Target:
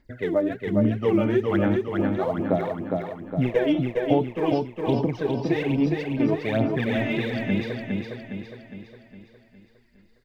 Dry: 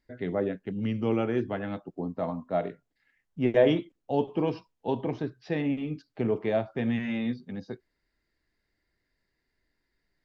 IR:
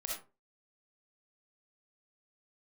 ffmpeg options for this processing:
-af "aphaser=in_gain=1:out_gain=1:delay=3.4:decay=0.77:speed=1.2:type=sinusoidal,acompressor=threshold=-22dB:ratio=6,aecho=1:1:410|820|1230|1640|2050|2460|2870:0.668|0.334|0.167|0.0835|0.0418|0.0209|0.0104,volume=3.5dB"

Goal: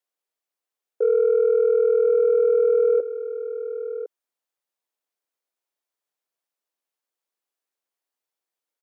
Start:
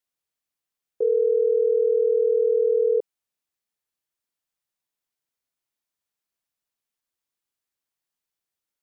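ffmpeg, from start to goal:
ffmpeg -i in.wav -filter_complex "[0:a]highpass=360,equalizer=frequency=480:width_type=o:width=2.7:gain=7,acontrast=44,asplit=2[link_01][link_02];[link_02]aecho=0:1:1056:0.266[link_03];[link_01][link_03]amix=inputs=2:normalize=0,volume=-8.5dB" out.wav

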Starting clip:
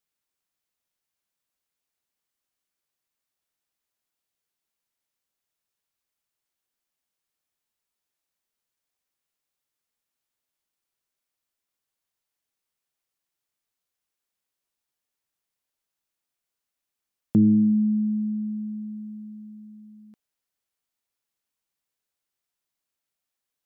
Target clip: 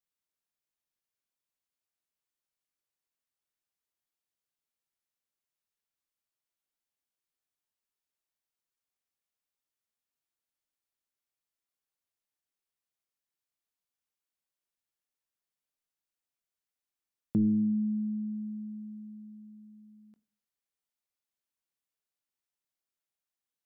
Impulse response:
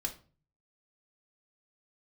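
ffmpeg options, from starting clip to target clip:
-filter_complex "[0:a]asplit=2[link_01][link_02];[1:a]atrim=start_sample=2205,asetrate=39690,aresample=44100,adelay=21[link_03];[link_02][link_03]afir=irnorm=-1:irlink=0,volume=-16dB[link_04];[link_01][link_04]amix=inputs=2:normalize=0,volume=-8dB"

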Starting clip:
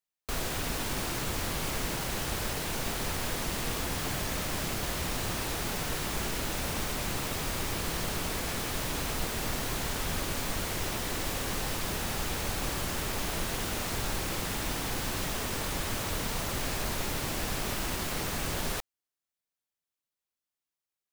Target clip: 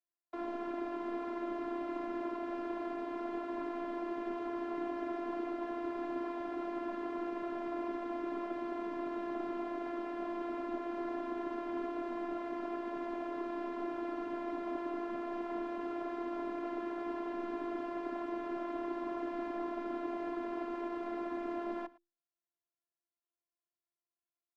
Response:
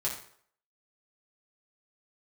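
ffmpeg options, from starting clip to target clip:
-af "lowpass=1100,aecho=1:1:94:0.0891,afreqshift=200,asetrate=37926,aresample=44100,afftfilt=real='hypot(re,im)*cos(PI*b)':imag='0':win_size=512:overlap=0.75,volume=1dB"

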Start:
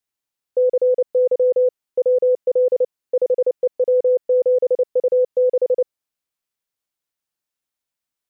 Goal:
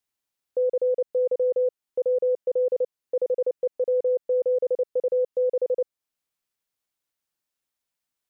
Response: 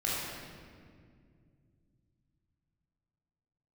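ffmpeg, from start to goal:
-af "alimiter=limit=-18.5dB:level=0:latency=1:release=381"

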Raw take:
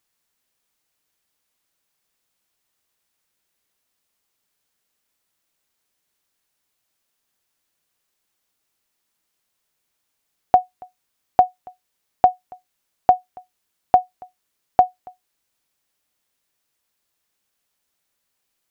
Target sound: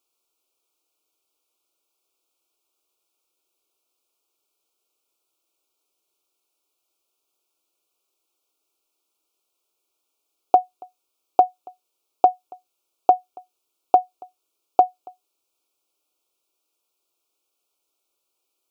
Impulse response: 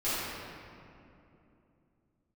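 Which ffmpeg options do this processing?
-af "asuperstop=centerf=1800:order=12:qfactor=2.2,lowshelf=frequency=260:width_type=q:width=3:gain=-9.5,volume=-2dB"

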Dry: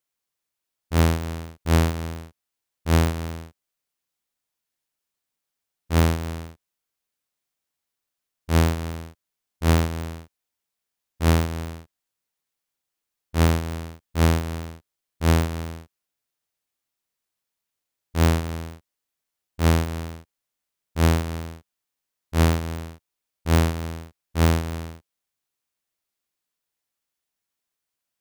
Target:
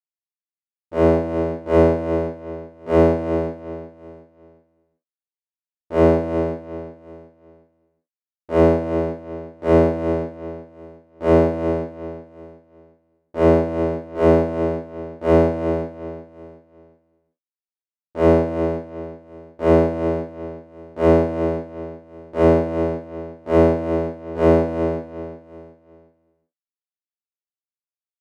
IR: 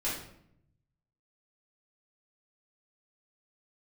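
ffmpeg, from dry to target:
-filter_complex "[0:a]dynaudnorm=framelen=310:gausssize=5:maxgain=11.5dB,acrusher=bits=4:mix=0:aa=0.5,bandpass=frequency=500:width_type=q:width=1.4:csg=0,aecho=1:1:365|730|1095|1460:0.237|0.0854|0.0307|0.0111[link_01];[1:a]atrim=start_sample=2205,afade=type=out:start_time=0.15:duration=0.01,atrim=end_sample=7056[link_02];[link_01][link_02]afir=irnorm=-1:irlink=0,volume=-2dB"

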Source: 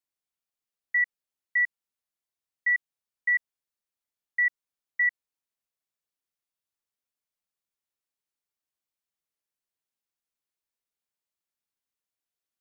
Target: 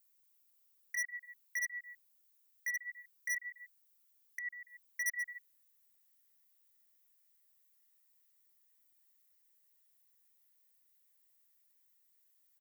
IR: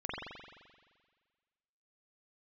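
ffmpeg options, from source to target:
-filter_complex "[0:a]asplit=2[link_01][link_02];[link_02]adelay=142,lowpass=frequency=1900:poles=1,volume=-17dB,asplit=2[link_03][link_04];[link_04]adelay=142,lowpass=frequency=1900:poles=1,volume=0.26[link_05];[link_01][link_03][link_05]amix=inputs=3:normalize=0,acompressor=threshold=-36dB:ratio=4,alimiter=level_in=9.5dB:limit=-24dB:level=0:latency=1,volume=-9.5dB,flanger=delay=5.3:depth=9.7:regen=-1:speed=0.22:shape=sinusoidal,asetnsamples=nb_out_samples=441:pad=0,asendcmd='5.06 equalizer g 9',equalizer=frequency=1900:width=7.3:gain=2,asoftclip=type=hard:threshold=-39.5dB,aemphasis=mode=production:type=bsi,volume=5dB"

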